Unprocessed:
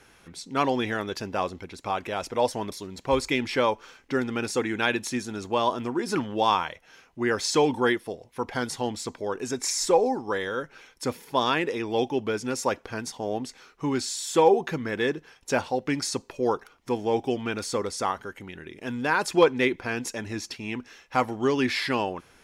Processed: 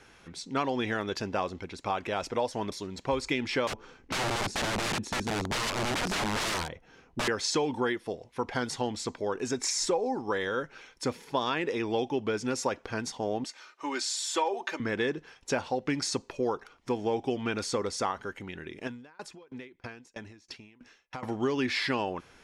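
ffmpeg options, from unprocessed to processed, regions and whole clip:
ffmpeg -i in.wav -filter_complex "[0:a]asettb=1/sr,asplit=3[link_01][link_02][link_03];[link_01]atrim=end=3.674[link_04];[link_02]atrim=start=3.67:end=7.28,asetpts=PTS-STARTPTS,afade=type=in:duration=0.004:curve=qsin,afade=type=out:start_time=3.606:duration=0.004:curve=qsin,tiltshelf=frequency=760:gain=8,bandreject=frequency=600:width=7.5,aeval=exprs='(mod(16.8*val(0)+1,2)-1)/16.8':channel_layout=same[link_05];[link_03]atrim=start=7.276[link_06];[link_04][link_05]acrossfade=duration=0.004:curve1=hsin:curve2=qsin[link_07];[link_07][link_06]acrossfade=duration=0.004:curve1=qsin:curve2=hsin,asettb=1/sr,asplit=3[link_08][link_09][link_10];[link_08]atrim=end=13.444[link_11];[link_09]atrim=start=13.44:end=14.8,asetpts=PTS-STARTPTS,afade=type=in:duration=0.004:curve=qsin,afade=type=out:start_time=1.356:duration=0.004:curve=qsin,highpass=590,aecho=1:1:3.3:0.56,atrim=end_sample=59976[link_12];[link_10]atrim=start=14.796[link_13];[link_11][link_12]acrossfade=duration=0.004:curve1=hsin:curve2=qsin[link_14];[link_14][link_13]acrossfade=duration=0.004:curve1=qsin:curve2=hsin,asettb=1/sr,asplit=3[link_15][link_16][link_17];[link_15]atrim=end=18.874[link_18];[link_16]atrim=start=18.87:end=21.23,asetpts=PTS-STARTPTS,afade=type=in:duration=0.004:curve=qsin,afade=type=out:start_time=2.356:duration=0.004:curve=qsin,acompressor=threshold=-34dB:ratio=4:attack=3.2:release=140:knee=1:detection=peak,aeval=exprs='val(0)*pow(10,-27*if(lt(mod(3.1*n/s,1),2*abs(3.1)/1000),1-mod(3.1*n/s,1)/(2*abs(3.1)/1000),(mod(3.1*n/s,1)-2*abs(3.1)/1000)/(1-2*abs(3.1)/1000))/20)':channel_layout=same[link_19];[link_17]atrim=start=21.226[link_20];[link_18][link_19]acrossfade=duration=0.004:curve1=hsin:curve2=qsin[link_21];[link_21][link_20]acrossfade=duration=0.004:curve1=qsin:curve2=hsin,lowpass=7900,acompressor=threshold=-25dB:ratio=5" out.wav

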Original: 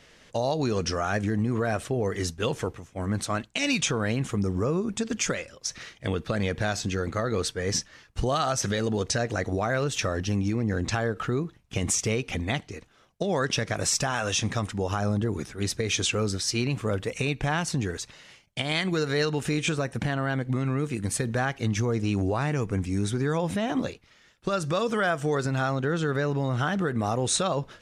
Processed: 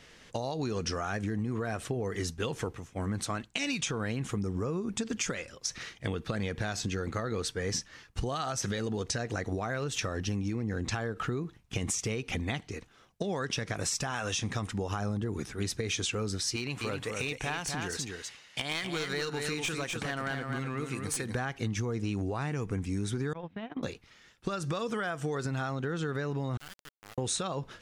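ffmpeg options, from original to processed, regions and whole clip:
ffmpeg -i in.wav -filter_complex "[0:a]asettb=1/sr,asplit=3[link_01][link_02][link_03];[link_01]atrim=end=16.564[link_04];[link_02]atrim=start=16.56:end=21.35,asetpts=PTS-STARTPTS,afade=type=in:duration=0.004:curve=qsin,afade=type=out:start_time=4.786:duration=0.004:curve=qsin,lowshelf=frequency=410:gain=-10,aeval=exprs='clip(val(0),-1,0.0447)':channel_layout=same,aecho=1:1:250:0.531,atrim=end_sample=211239[link_05];[link_03]atrim=start=21.346[link_06];[link_04][link_05]acrossfade=duration=0.004:curve1=hsin:curve2=qsin[link_07];[link_07][link_06]acrossfade=duration=0.004:curve1=qsin:curve2=hsin,asettb=1/sr,asplit=3[link_08][link_09][link_10];[link_08]atrim=end=23.334[link_11];[link_09]atrim=start=23.33:end=23.83,asetpts=PTS-STARTPTS,afade=type=in:duration=0.004:curve=qsin,afade=type=out:start_time=0.496:duration=0.004:curve=qsin,agate=range=-29dB:threshold=-26dB:ratio=16:release=100:detection=peak,lowpass=frequency=3400:width=0.5412,lowpass=frequency=3400:width=1.3066,acompressor=threshold=-33dB:ratio=4:attack=3.2:release=140:knee=1:detection=peak[link_12];[link_10]atrim=start=23.826[link_13];[link_11][link_12]acrossfade=duration=0.004:curve1=hsin:curve2=qsin[link_14];[link_14][link_13]acrossfade=duration=0.004:curve1=qsin:curve2=hsin,asettb=1/sr,asplit=3[link_15][link_16][link_17];[link_15]atrim=end=26.574[link_18];[link_16]atrim=start=26.57:end=27.18,asetpts=PTS-STARTPTS,afade=type=in:duration=0.004:curve=qsin,afade=type=out:start_time=0.606:duration=0.004:curve=qsin,lowpass=3200,aderivative,acrusher=bits=4:dc=4:mix=0:aa=0.000001[link_19];[link_17]atrim=start=27.176[link_20];[link_18][link_19]acrossfade=duration=0.004:curve1=hsin:curve2=qsin[link_21];[link_21][link_20]acrossfade=duration=0.004:curve1=qsin:curve2=hsin,acompressor=threshold=-29dB:ratio=6,equalizer=frequency=600:width_type=o:width=0.29:gain=-4.5" out.wav

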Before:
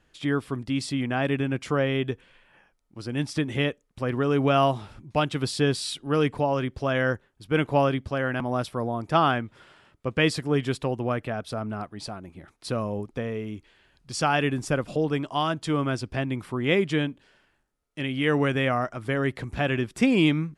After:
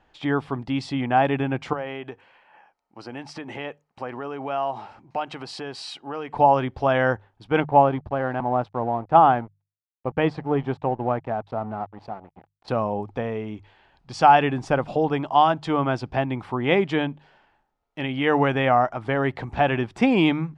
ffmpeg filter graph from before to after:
ffmpeg -i in.wav -filter_complex "[0:a]asettb=1/sr,asplit=3[link_01][link_02][link_03];[link_01]atrim=end=1.734[link_04];[link_02]atrim=start=1.73:end=6.33,asetpts=PTS-STARTPTS,afade=type=in:duration=0.004:curve=qsin,afade=type=out:start_time=4.596:duration=0.004:curve=qsin,bandreject=frequency=3500:width=6.8,acompressor=threshold=-28dB:ratio=6:attack=3.2:release=140:knee=1:detection=peak,highpass=frequency=390:poles=1[link_05];[link_03]atrim=start=6.326[link_06];[link_04][link_05]acrossfade=duration=0.004:curve1=hsin:curve2=qsin[link_07];[link_07][link_06]acrossfade=duration=0.004:curve1=qsin:curve2=hsin,asettb=1/sr,asplit=3[link_08][link_09][link_10];[link_08]atrim=end=7.604[link_11];[link_09]atrim=start=7.6:end=12.68,asetpts=PTS-STARTPTS,afade=type=in:duration=0.004:curve=qsin,afade=type=out:start_time=5.076:duration=0.004:curve=qsin,aeval=exprs='sgn(val(0))*max(abs(val(0))-0.0075,0)':channel_layout=same,lowpass=frequency=1100:poles=1[link_12];[link_10]atrim=start=12.676[link_13];[link_11][link_12]acrossfade=duration=0.004:curve1=hsin:curve2=qsin[link_14];[link_14][link_13]acrossfade=duration=0.004:curve1=qsin:curve2=hsin,lowpass=4300,equalizer=frequency=820:width_type=o:width=0.62:gain=13.5,bandreject=frequency=50:width_type=h:width=6,bandreject=frequency=100:width_type=h:width=6,bandreject=frequency=150:width_type=h:width=6,volume=1dB" out.wav

